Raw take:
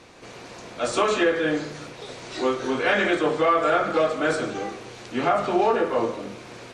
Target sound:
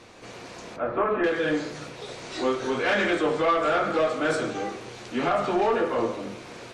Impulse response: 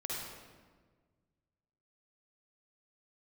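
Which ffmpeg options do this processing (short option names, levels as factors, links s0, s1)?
-filter_complex "[0:a]asoftclip=type=tanh:threshold=0.158,asettb=1/sr,asplit=3[s0][s1][s2];[s0]atrim=end=0.764[s3];[s1]atrim=start=0.76:end=1.24,asetpts=PTS-STARTPTS,afade=t=in:d=0.004:c=qsin,afade=t=out:st=0.476:d=0.004:c=qsin,lowpass=f=1800:w=0.5412,lowpass=f=1800:w=1.3066[s4];[s2]atrim=start=1.236[s5];[s3][s4]acrossfade=d=0.004:c1=hsin:c2=qsin[s6];[s6][s5]acrossfade=d=0.004:c1=qsin:c2=hsin,flanger=delay=8.3:depth=9.6:regen=-58:speed=0.34:shape=triangular,volume=1.58"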